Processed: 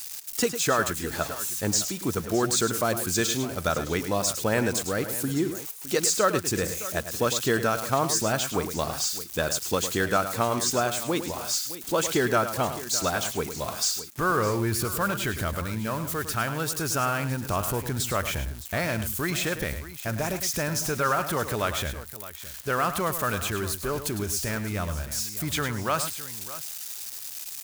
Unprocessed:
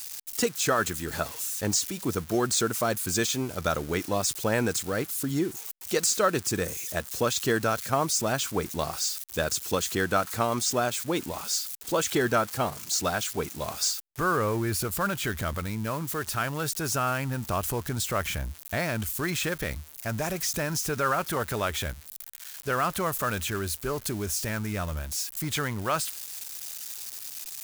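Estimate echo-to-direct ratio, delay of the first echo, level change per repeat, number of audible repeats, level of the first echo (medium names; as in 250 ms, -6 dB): -9.5 dB, 105 ms, no regular repeats, 2, -10.5 dB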